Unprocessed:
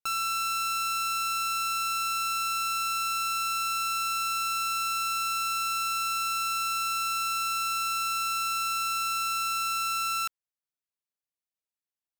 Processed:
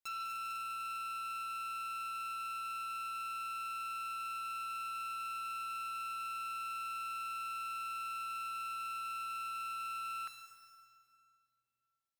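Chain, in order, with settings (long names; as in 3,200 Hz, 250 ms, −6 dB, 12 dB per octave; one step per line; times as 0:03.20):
hard clipping −33.5 dBFS, distortion −10 dB
on a send at −8 dB: convolution reverb RT60 2.5 s, pre-delay 4 ms
on the sum: saturating transformer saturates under 2,300 Hz
level −2.5 dB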